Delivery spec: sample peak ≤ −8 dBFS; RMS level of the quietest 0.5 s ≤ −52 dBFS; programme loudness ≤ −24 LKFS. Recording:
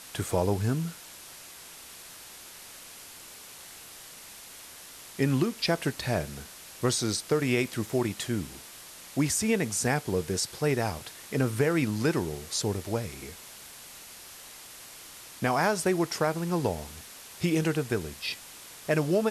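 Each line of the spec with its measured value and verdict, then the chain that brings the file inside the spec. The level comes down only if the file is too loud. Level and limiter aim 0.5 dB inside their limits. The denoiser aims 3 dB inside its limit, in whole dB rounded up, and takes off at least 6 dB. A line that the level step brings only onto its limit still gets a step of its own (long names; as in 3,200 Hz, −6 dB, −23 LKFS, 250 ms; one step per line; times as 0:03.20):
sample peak −13.0 dBFS: in spec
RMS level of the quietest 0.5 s −47 dBFS: out of spec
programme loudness −29.0 LKFS: in spec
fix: broadband denoise 8 dB, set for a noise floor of −47 dBFS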